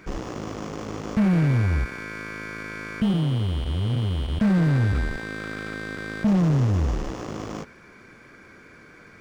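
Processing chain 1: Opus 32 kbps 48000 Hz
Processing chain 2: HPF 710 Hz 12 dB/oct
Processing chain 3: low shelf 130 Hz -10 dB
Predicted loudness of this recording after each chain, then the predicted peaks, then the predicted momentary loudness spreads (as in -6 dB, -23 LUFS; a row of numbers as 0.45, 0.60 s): -25.0, -36.5, -28.5 LUFS; -14.5, -20.0, -14.5 dBFS; 14, 15, 23 LU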